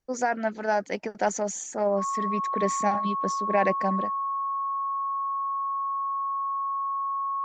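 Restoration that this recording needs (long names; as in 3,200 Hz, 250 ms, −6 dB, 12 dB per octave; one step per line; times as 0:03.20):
notch filter 1,100 Hz, Q 30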